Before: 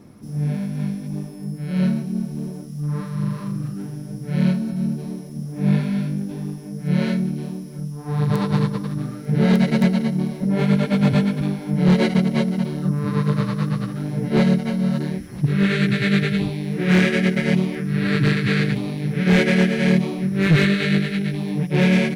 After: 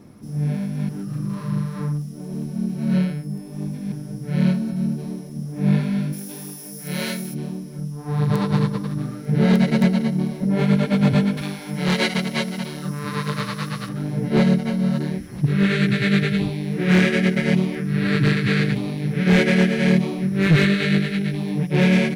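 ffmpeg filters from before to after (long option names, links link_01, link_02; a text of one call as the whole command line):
ffmpeg -i in.wav -filter_complex "[0:a]asplit=3[link_01][link_02][link_03];[link_01]afade=type=out:start_time=6.12:duration=0.02[link_04];[link_02]aemphasis=mode=production:type=riaa,afade=type=in:start_time=6.12:duration=0.02,afade=type=out:start_time=7.33:duration=0.02[link_05];[link_03]afade=type=in:start_time=7.33:duration=0.02[link_06];[link_04][link_05][link_06]amix=inputs=3:normalize=0,asettb=1/sr,asplit=3[link_07][link_08][link_09];[link_07]atrim=end=11.374[link_10];[link_08]atrim=start=11.37:end=13.89,asetpts=PTS-STARTPTS,afade=type=in:duration=0.004:curve=qsin,afade=type=out:start_time=2.516:duration=0.004:curve=qsin,tiltshelf=frequency=820:gain=-7.5[link_11];[link_09]atrim=start=13.886[link_12];[link_10][link_11]acrossfade=duration=0.004:curve1=hsin:curve2=qsin[link_13];[link_13][link_12]acrossfade=duration=0.004:curve1=qsin:curve2=hsin,asplit=3[link_14][link_15][link_16];[link_14]atrim=end=0.892[link_17];[link_15]atrim=start=0.888:end=3.922,asetpts=PTS-STARTPTS,areverse[link_18];[link_16]atrim=start=3.918[link_19];[link_17][link_18]acrossfade=duration=0.004:curve1=hsin:curve2=hsin[link_20];[link_20][link_19]acrossfade=duration=0.004:curve1=hsin:curve2=hsin" out.wav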